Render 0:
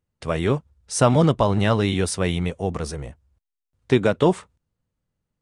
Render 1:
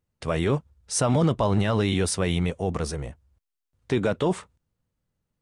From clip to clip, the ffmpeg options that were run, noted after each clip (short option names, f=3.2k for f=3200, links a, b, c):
-af "alimiter=limit=-13.5dB:level=0:latency=1:release=11"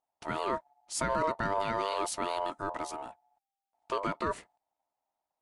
-af "aeval=exprs='val(0)*sin(2*PI*790*n/s)':c=same,volume=-6dB"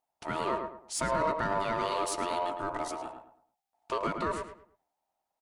-filter_complex "[0:a]asplit=2[a][b];[b]asoftclip=type=tanh:threshold=-32dB,volume=-5dB[c];[a][c]amix=inputs=2:normalize=0,asplit=2[d][e];[e]adelay=108,lowpass=f=1.8k:p=1,volume=-5dB,asplit=2[f][g];[g]adelay=108,lowpass=f=1.8k:p=1,volume=0.32,asplit=2[h][i];[i]adelay=108,lowpass=f=1.8k:p=1,volume=0.32,asplit=2[j][k];[k]adelay=108,lowpass=f=1.8k:p=1,volume=0.32[l];[d][f][h][j][l]amix=inputs=5:normalize=0,volume=-2dB"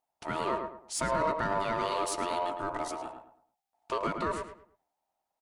-af anull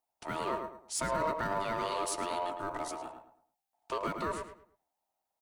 -filter_complex "[0:a]acrossover=split=200|2200[a][b][c];[a]acrusher=samples=22:mix=1:aa=0.000001[d];[d][b][c]amix=inputs=3:normalize=0,crystalizer=i=0.5:c=0,volume=-3dB"